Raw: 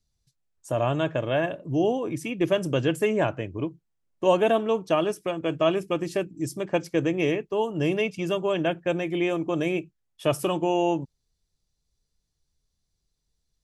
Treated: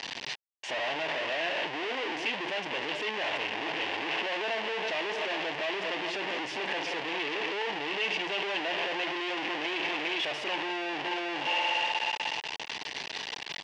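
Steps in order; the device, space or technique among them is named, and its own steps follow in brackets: doubler 20 ms -11.5 dB; thinning echo 60 ms, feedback 85%, high-pass 210 Hz, level -23.5 dB; echo 0.403 s -18 dB; home computer beeper (infinite clipping; speaker cabinet 520–4300 Hz, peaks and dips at 560 Hz -4 dB, 890 Hz +3 dB, 1300 Hz -10 dB, 1900 Hz +5 dB, 2800 Hz +7 dB, 4100 Hz -4 dB); gain -2 dB

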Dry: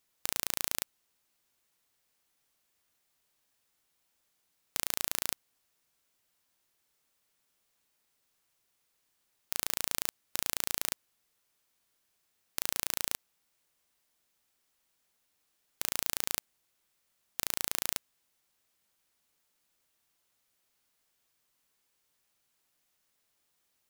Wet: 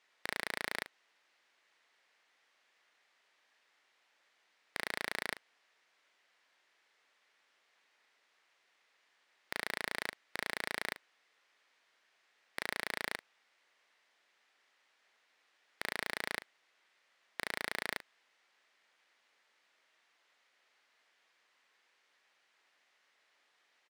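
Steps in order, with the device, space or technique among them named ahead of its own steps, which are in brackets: megaphone (BPF 450–3700 Hz; bell 1900 Hz +6 dB 0.57 oct; hard clip -30 dBFS, distortion -5 dB; doubler 40 ms -13 dB); gain +8.5 dB

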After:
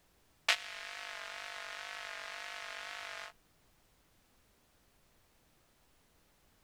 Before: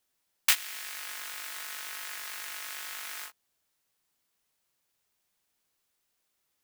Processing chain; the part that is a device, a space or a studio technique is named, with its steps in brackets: horn gramophone (BPF 300–4200 Hz; bell 640 Hz +12 dB 0.4 oct; wow and flutter; pink noise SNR 24 dB); gain -2 dB

